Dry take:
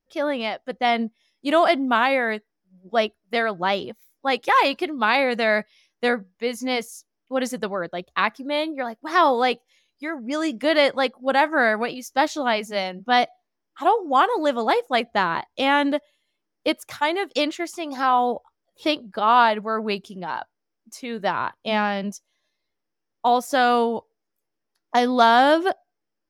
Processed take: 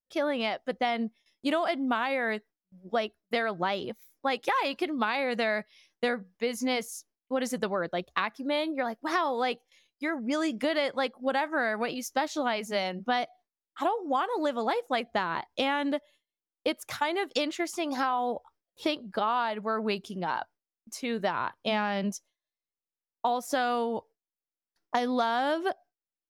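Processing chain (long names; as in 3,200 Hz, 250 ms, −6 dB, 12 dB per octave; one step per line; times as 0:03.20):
noise gate with hold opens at −53 dBFS
downward compressor, threshold −25 dBFS, peak gain reduction 13.5 dB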